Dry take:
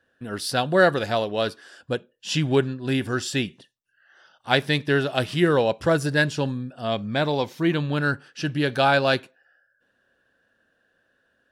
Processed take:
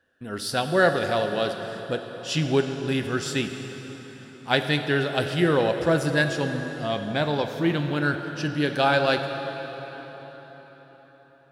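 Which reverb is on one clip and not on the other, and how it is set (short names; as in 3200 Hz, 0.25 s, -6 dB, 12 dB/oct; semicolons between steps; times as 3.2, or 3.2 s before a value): plate-style reverb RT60 4.8 s, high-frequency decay 0.75×, DRR 6 dB; gain -2 dB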